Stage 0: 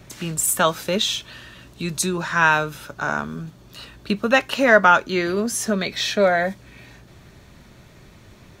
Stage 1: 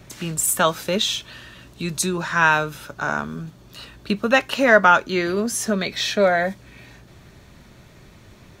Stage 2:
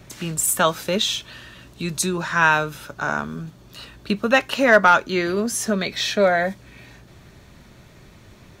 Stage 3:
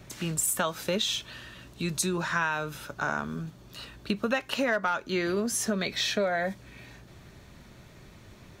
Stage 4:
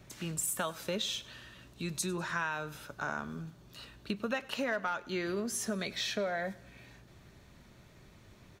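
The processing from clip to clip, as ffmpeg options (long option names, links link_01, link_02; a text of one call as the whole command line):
ffmpeg -i in.wav -af anull out.wav
ffmpeg -i in.wav -af "asoftclip=type=hard:threshold=-4dB" out.wav
ffmpeg -i in.wav -af "acompressor=threshold=-20dB:ratio=10,volume=-3.5dB" out.wav
ffmpeg -i in.wav -af "aecho=1:1:99|198|297|396:0.0891|0.0455|0.0232|0.0118,volume=-6.5dB" out.wav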